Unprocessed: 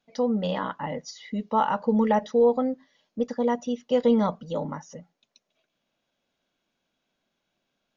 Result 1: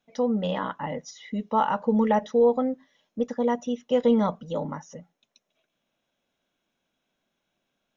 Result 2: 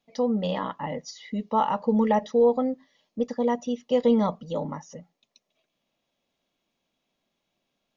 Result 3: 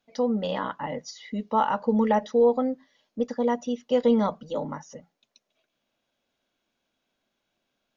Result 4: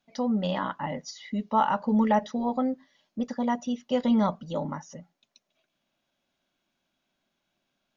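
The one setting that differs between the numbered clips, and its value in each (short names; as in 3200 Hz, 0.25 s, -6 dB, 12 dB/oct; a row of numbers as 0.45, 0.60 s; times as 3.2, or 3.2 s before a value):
notch, frequency: 4600, 1500, 170, 470 Hz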